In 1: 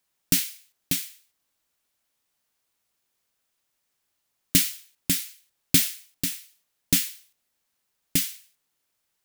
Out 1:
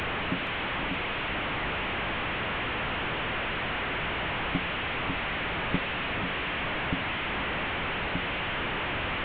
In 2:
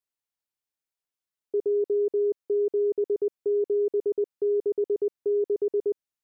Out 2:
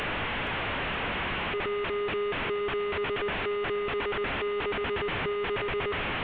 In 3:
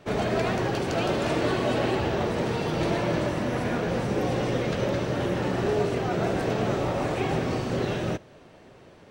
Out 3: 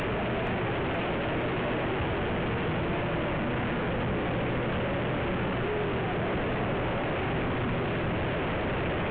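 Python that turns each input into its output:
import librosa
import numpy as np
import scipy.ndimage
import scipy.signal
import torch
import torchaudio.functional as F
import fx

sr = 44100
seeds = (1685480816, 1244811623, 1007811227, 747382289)

y = fx.delta_mod(x, sr, bps=16000, step_db=-16.5)
y = fx.low_shelf(y, sr, hz=180.0, db=5.5)
y = fx.echo_feedback(y, sr, ms=471, feedback_pct=59, wet_db=-16.0)
y = fx.rev_schroeder(y, sr, rt60_s=2.9, comb_ms=29, drr_db=20.0)
y = F.gain(torch.from_numpy(y), -8.0).numpy()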